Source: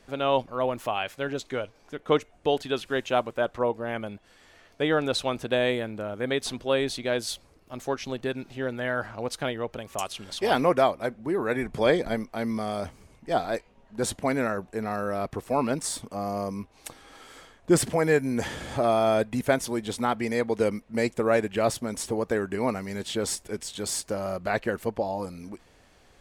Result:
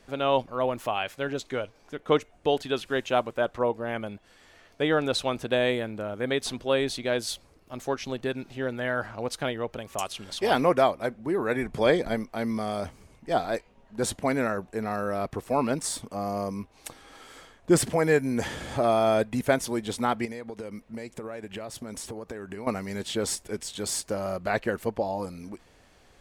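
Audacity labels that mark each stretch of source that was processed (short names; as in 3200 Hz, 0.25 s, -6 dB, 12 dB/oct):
20.250000	22.670000	compressor 12:1, threshold -33 dBFS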